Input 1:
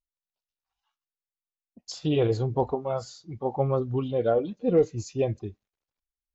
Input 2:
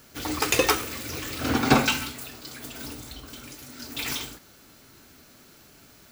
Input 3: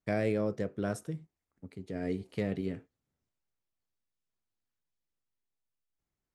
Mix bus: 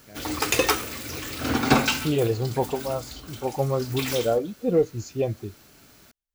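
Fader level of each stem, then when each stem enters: +0.5, 0.0, -17.0 dB; 0.00, 0.00, 0.00 s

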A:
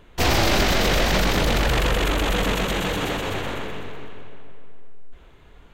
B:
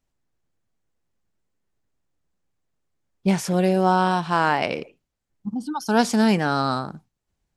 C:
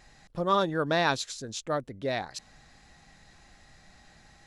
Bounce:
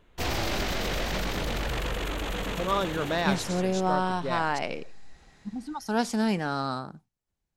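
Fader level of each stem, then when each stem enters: -10.0, -7.5, -2.5 dB; 0.00, 0.00, 2.20 s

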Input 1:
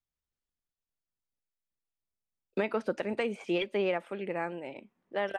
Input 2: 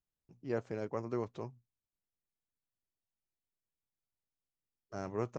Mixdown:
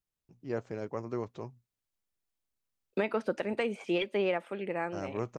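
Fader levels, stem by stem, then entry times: 0.0, +1.0 dB; 0.40, 0.00 s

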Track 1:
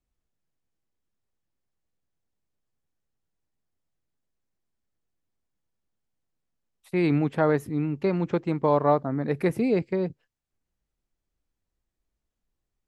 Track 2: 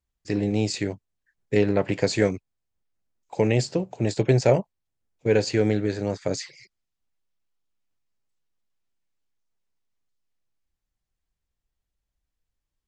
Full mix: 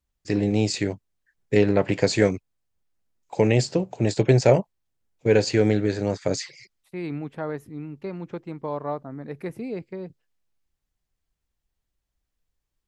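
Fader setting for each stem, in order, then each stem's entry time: -8.5, +2.0 dB; 0.00, 0.00 s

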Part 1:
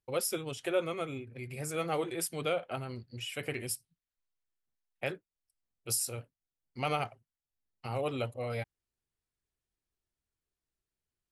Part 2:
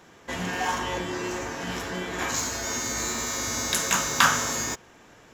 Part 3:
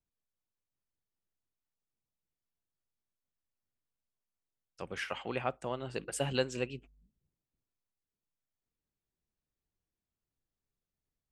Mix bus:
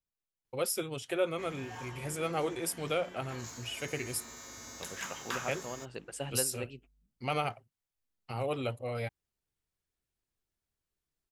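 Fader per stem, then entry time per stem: 0.0, -18.5, -5.0 dB; 0.45, 1.10, 0.00 s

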